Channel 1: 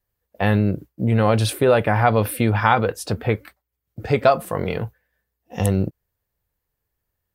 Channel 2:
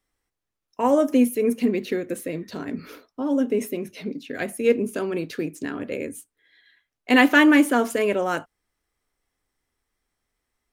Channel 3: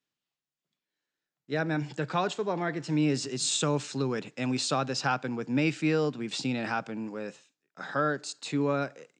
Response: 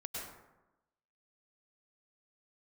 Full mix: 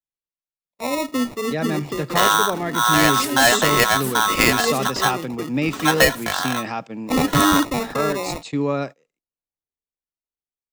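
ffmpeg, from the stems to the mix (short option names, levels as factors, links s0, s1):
-filter_complex "[0:a]aeval=exprs='val(0)*sgn(sin(2*PI*1200*n/s))':c=same,adelay=1750,volume=0.708[s0];[1:a]acrusher=samples=28:mix=1:aa=0.000001,volume=0.501[s1];[2:a]bandreject=f=1500:w=5.5,volume=1.26[s2];[s0][s1][s2]amix=inputs=3:normalize=0,agate=range=0.0794:threshold=0.0178:ratio=16:detection=peak,dynaudnorm=f=210:g=13:m=1.88"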